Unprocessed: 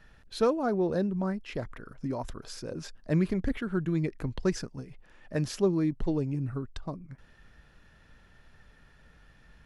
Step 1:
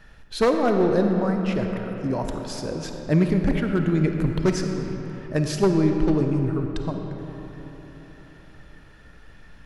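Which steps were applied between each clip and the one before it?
one-sided fold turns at -22 dBFS; reverb RT60 4.0 s, pre-delay 10 ms, DRR 4 dB; gain +6.5 dB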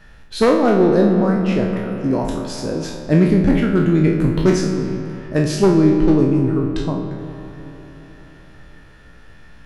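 spectral trails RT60 0.54 s; dynamic EQ 270 Hz, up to +5 dB, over -33 dBFS, Q 1; gain +2 dB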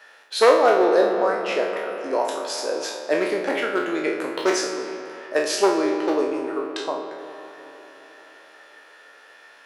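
HPF 460 Hz 24 dB/oct; gain +2.5 dB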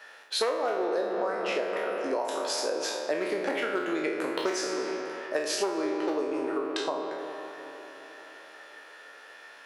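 compressor 6:1, threshold -26 dBFS, peak gain reduction 15.5 dB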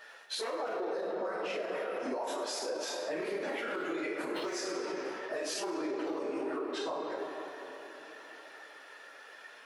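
phase scrambler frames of 50 ms; limiter -25 dBFS, peak gain reduction 9 dB; gain -2.5 dB

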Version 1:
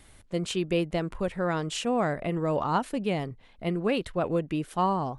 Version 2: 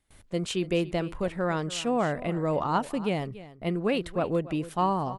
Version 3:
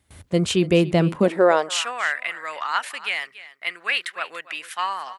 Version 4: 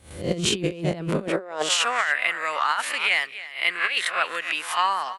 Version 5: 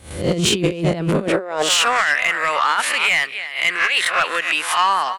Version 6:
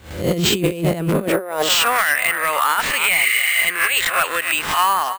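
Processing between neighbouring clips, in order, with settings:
gate with hold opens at -44 dBFS; echo 0.285 s -16.5 dB
high-pass sweep 76 Hz -> 1800 Hz, 0.82–1.98; gain +8.5 dB
spectral swells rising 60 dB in 0.40 s; negative-ratio compressor -23 dBFS, ratio -0.5
in parallel at 0 dB: limiter -15 dBFS, peak gain reduction 7.5 dB; on the sum: soft clip -11.5 dBFS, distortion -16 dB; gain +3 dB
spectral repair 3.17–3.64, 1100–7300 Hz; sample-and-hold 4×

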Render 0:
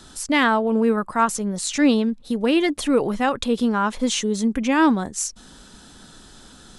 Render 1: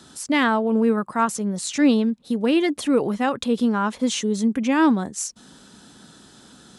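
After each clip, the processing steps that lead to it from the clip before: HPF 150 Hz 12 dB/oct; low shelf 230 Hz +7.5 dB; gain -2.5 dB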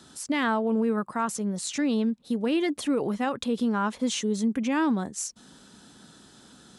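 limiter -14 dBFS, peak gain reduction 6.5 dB; gain -4 dB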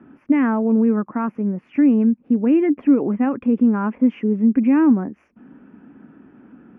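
elliptic low-pass 2500 Hz, stop band 40 dB; bell 270 Hz +13.5 dB 1.1 oct

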